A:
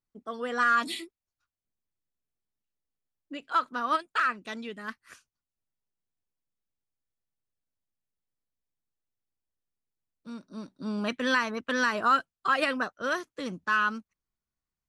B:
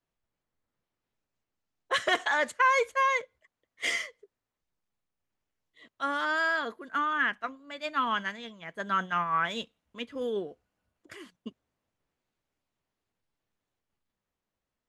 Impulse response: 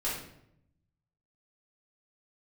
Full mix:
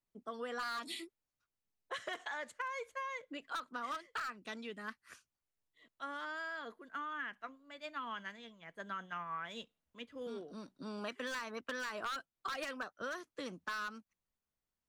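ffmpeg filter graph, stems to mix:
-filter_complex "[0:a]volume=-5dB,asplit=2[link_01][link_02];[1:a]volume=-10.5dB[link_03];[link_02]apad=whole_len=656423[link_04];[link_03][link_04]sidechaincompress=threshold=-41dB:ratio=8:attack=9.8:release=216[link_05];[link_01][link_05]amix=inputs=2:normalize=0,acrossover=split=330[link_06][link_07];[link_06]acompressor=threshold=-49dB:ratio=6[link_08];[link_08][link_07]amix=inputs=2:normalize=0,aeval=exprs='0.0531*(abs(mod(val(0)/0.0531+3,4)-2)-1)':channel_layout=same,acompressor=threshold=-38dB:ratio=6"

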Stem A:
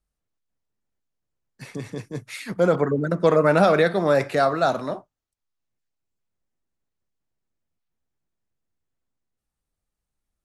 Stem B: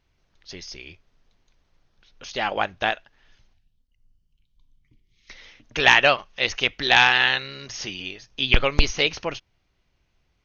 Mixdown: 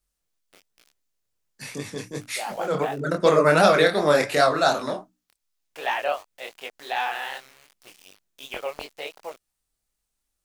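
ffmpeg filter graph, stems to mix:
ffmpeg -i stem1.wav -i stem2.wav -filter_complex "[0:a]bandreject=frequency=60:width_type=h:width=6,bandreject=frequency=120:width_type=h:width=6,bandreject=frequency=180:width_type=h:width=6,bandreject=frequency=240:width_type=h:width=6,bandreject=frequency=300:width_type=h:width=6,volume=3dB[link_01];[1:a]bandpass=frequency=690:width_type=q:width=1.9:csg=0,aeval=exprs='val(0)*gte(abs(val(0)),0.00708)':channel_layout=same,volume=-1.5dB,asplit=2[link_02][link_03];[link_03]apad=whole_len=460581[link_04];[link_01][link_04]sidechaincompress=threshold=-37dB:ratio=8:attack=27:release=150[link_05];[link_05][link_02]amix=inputs=2:normalize=0,equalizer=frequency=110:width_type=o:width=1.6:gain=-4,flanger=delay=20:depth=7.6:speed=2.7,highshelf=frequency=2500:gain=10.5" out.wav

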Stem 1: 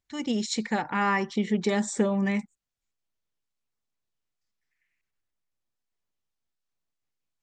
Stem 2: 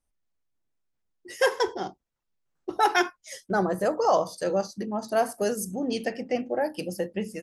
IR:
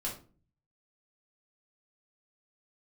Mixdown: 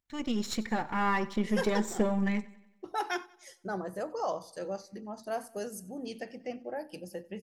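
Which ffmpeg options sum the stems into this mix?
-filter_complex "[0:a]aeval=exprs='if(lt(val(0),0),0.447*val(0),val(0))':channel_layout=same,equalizer=frequency=7200:width_type=o:width=2.3:gain=-3.5,volume=-0.5dB,asplit=2[link_01][link_02];[link_02]volume=-20dB[link_03];[1:a]adelay=150,volume=-11dB,asplit=2[link_04][link_05];[link_05]volume=-22.5dB[link_06];[link_03][link_06]amix=inputs=2:normalize=0,aecho=0:1:92|184|276|368|460|552|644:1|0.5|0.25|0.125|0.0625|0.0312|0.0156[link_07];[link_01][link_04][link_07]amix=inputs=3:normalize=0"

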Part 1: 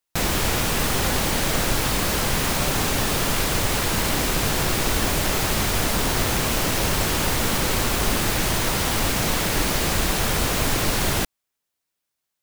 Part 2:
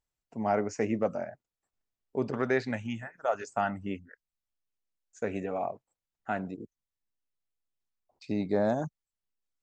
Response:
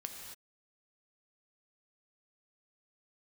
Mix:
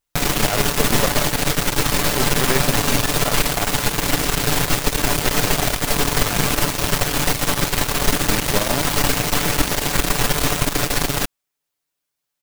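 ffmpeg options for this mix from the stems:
-filter_complex "[0:a]aecho=1:1:6.9:0.65,volume=-0.5dB[link_01];[1:a]volume=2dB[link_02];[link_01][link_02]amix=inputs=2:normalize=0,aeval=exprs='0.501*(cos(1*acos(clip(val(0)/0.501,-1,1)))-cos(1*PI/2))+0.158*(cos(4*acos(clip(val(0)/0.501,-1,1)))-cos(4*PI/2))':channel_layout=same"

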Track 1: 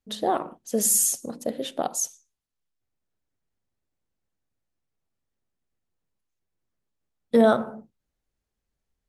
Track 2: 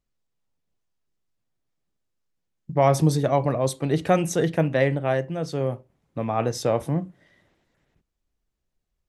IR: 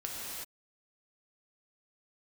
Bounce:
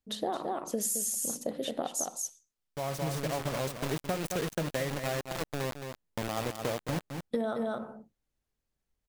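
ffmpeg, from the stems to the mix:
-filter_complex "[0:a]volume=-3dB,asplit=3[link_01][link_02][link_03];[link_02]volume=-5dB[link_04];[1:a]acrusher=bits=3:mix=0:aa=0.000001,volume=-5.5dB,asplit=2[link_05][link_06];[link_06]volume=-11dB[link_07];[link_03]apad=whole_len=400475[link_08];[link_05][link_08]sidechaincompress=threshold=-48dB:ratio=6:attack=33:release=1100[link_09];[link_04][link_07]amix=inputs=2:normalize=0,aecho=0:1:217:1[link_10];[link_01][link_09][link_10]amix=inputs=3:normalize=0,acompressor=threshold=-28dB:ratio=12"

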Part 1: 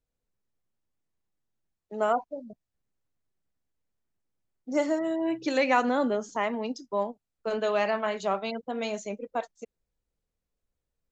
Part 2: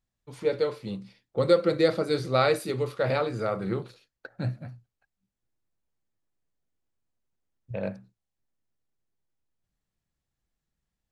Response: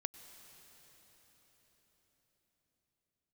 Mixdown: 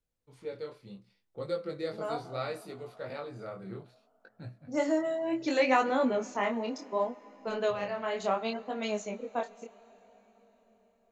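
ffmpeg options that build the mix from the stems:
-filter_complex "[0:a]volume=-1.5dB,asplit=2[link_01][link_02];[link_02]volume=-6dB[link_03];[1:a]volume=-10.5dB,asplit=2[link_04][link_05];[link_05]apad=whole_len=490024[link_06];[link_01][link_06]sidechaincompress=threshold=-52dB:ratio=8:attack=5.6:release=204[link_07];[2:a]atrim=start_sample=2205[link_08];[link_03][link_08]afir=irnorm=-1:irlink=0[link_09];[link_07][link_04][link_09]amix=inputs=3:normalize=0,flanger=delay=18.5:depth=7.8:speed=0.68"

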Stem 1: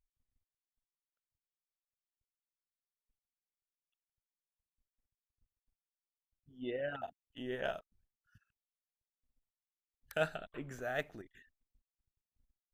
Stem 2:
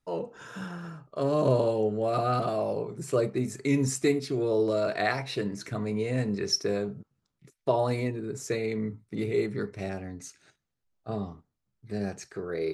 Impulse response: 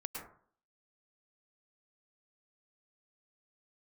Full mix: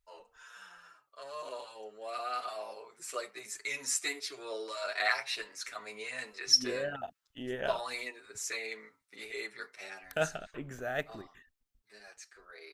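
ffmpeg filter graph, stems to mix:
-filter_complex "[0:a]volume=2.5dB[link_01];[1:a]highpass=1300,dynaudnorm=framelen=250:gausssize=21:maxgain=8.5dB,asplit=2[link_02][link_03];[link_03]adelay=7.6,afreqshift=1.2[link_04];[link_02][link_04]amix=inputs=2:normalize=1,volume=-3dB[link_05];[link_01][link_05]amix=inputs=2:normalize=0"

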